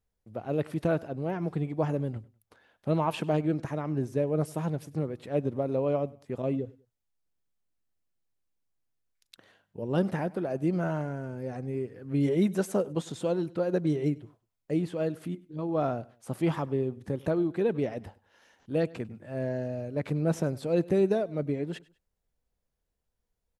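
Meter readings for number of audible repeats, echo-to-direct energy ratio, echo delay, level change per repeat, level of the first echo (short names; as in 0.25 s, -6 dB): 2, -21.5 dB, 99 ms, -9.5 dB, -22.0 dB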